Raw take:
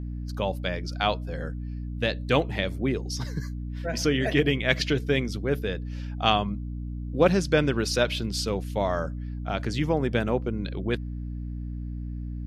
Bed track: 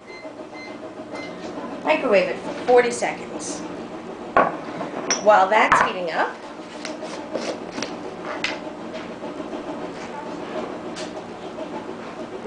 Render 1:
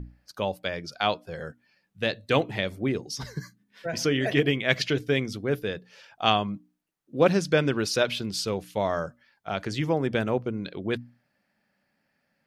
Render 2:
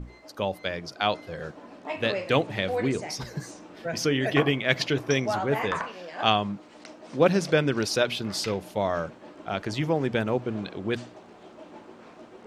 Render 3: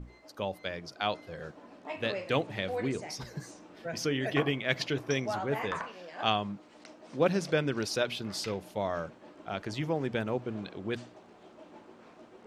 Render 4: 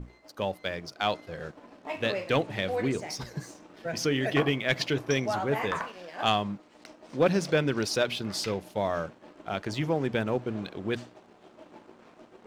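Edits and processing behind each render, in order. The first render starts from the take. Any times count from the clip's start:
mains-hum notches 60/120/180/240/300 Hz
mix in bed track −14.5 dB
level −6 dB
leveller curve on the samples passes 1

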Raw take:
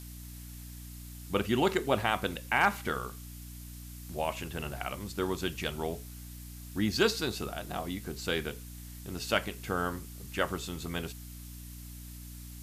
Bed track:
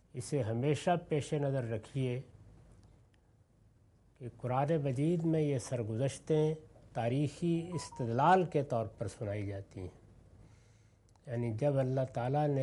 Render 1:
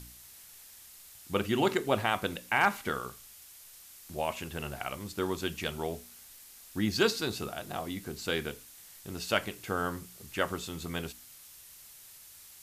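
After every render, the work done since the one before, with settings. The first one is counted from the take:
hum removal 60 Hz, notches 5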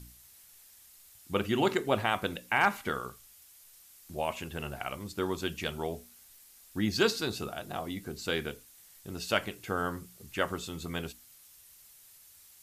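broadband denoise 6 dB, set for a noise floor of −53 dBFS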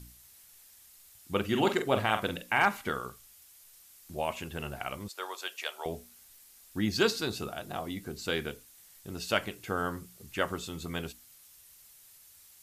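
0:01.44–0:02.64: double-tracking delay 46 ms −7.5 dB
0:05.08–0:05.86: high-pass filter 570 Hz 24 dB per octave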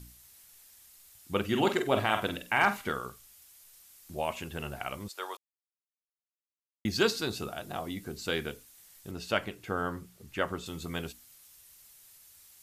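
0:01.70–0:02.92: double-tracking delay 49 ms −10.5 dB
0:05.37–0:06.85: silence
0:09.11–0:10.66: high-shelf EQ 4,200 Hz −7.5 dB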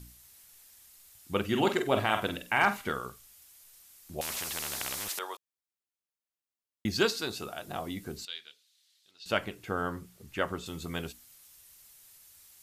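0:04.21–0:05.19: every bin compressed towards the loudest bin 10 to 1
0:07.05–0:07.68: low-shelf EQ 270 Hz −7.5 dB
0:08.25–0:09.26: resonant band-pass 3,900 Hz, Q 3.2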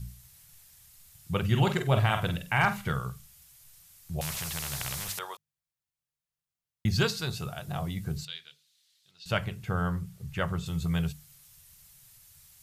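low shelf with overshoot 200 Hz +10 dB, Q 3
mains-hum notches 50/100/150/200 Hz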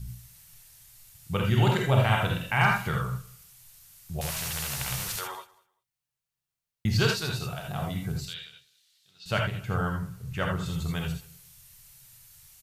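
repeating echo 195 ms, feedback 18%, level −22.5 dB
reverb whose tail is shaped and stops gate 100 ms rising, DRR 1 dB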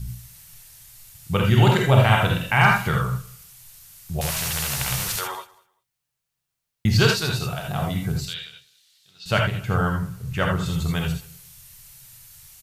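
level +6.5 dB
brickwall limiter −2 dBFS, peak gain reduction 1 dB

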